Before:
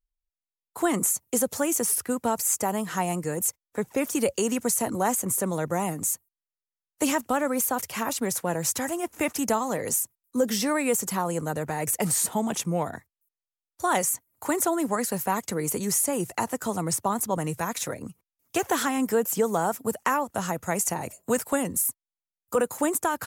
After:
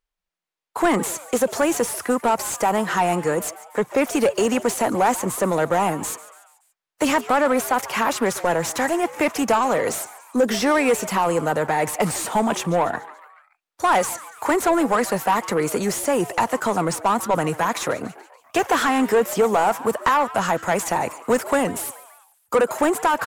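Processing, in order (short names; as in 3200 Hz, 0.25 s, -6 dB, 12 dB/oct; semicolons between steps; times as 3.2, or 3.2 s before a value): overdrive pedal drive 19 dB, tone 1700 Hz, clips at -10.5 dBFS; frequency-shifting echo 0.143 s, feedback 52%, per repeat +150 Hz, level -17.5 dB; gain +2.5 dB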